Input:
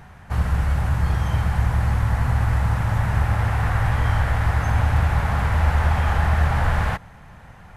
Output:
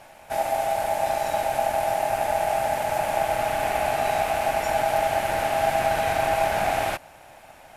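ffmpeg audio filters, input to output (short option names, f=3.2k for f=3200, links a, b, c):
-af "crystalizer=i=3.5:c=0,aeval=exprs='val(0)*sin(2*PI*730*n/s)':c=same,volume=-2dB"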